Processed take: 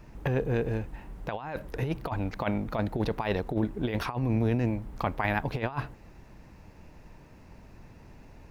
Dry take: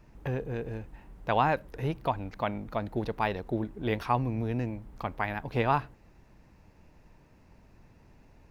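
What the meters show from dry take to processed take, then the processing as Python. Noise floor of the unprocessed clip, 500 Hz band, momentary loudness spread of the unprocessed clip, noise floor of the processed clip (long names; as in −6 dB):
−59 dBFS, +0.5 dB, 11 LU, −52 dBFS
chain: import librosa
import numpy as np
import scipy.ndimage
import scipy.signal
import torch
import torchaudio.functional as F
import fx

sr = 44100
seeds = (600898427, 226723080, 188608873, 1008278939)

y = fx.over_compress(x, sr, threshold_db=-31.0, ratio=-0.5)
y = y * 10.0 ** (4.0 / 20.0)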